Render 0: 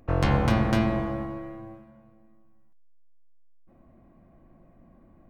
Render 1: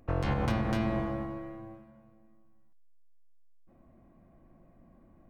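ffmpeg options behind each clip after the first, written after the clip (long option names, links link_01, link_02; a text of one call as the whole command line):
ffmpeg -i in.wav -af "alimiter=limit=-15.5dB:level=0:latency=1:release=109,volume=-3.5dB" out.wav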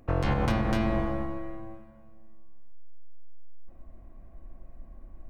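ffmpeg -i in.wav -af "asubboost=boost=10:cutoff=52,volume=3.5dB" out.wav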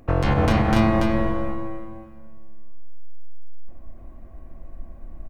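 ffmpeg -i in.wav -af "aecho=1:1:286:0.708,volume=6dB" out.wav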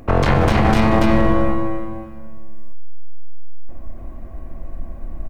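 ffmpeg -i in.wav -af "aeval=exprs='clip(val(0),-1,0.0562)':channel_layout=same,alimiter=level_in=12.5dB:limit=-1dB:release=50:level=0:latency=1,volume=-3.5dB" out.wav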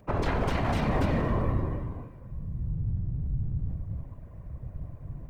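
ffmpeg -i in.wav -af "afreqshift=-55,afftfilt=real='hypot(re,im)*cos(2*PI*random(0))':imag='hypot(re,im)*sin(2*PI*random(1))':win_size=512:overlap=0.75,volume=-6dB" out.wav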